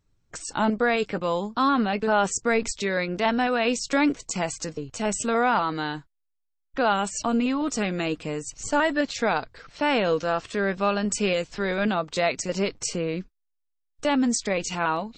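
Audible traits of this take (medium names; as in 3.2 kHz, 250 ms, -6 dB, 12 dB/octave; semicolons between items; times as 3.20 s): noise floor -76 dBFS; spectral tilt -4.0 dB/octave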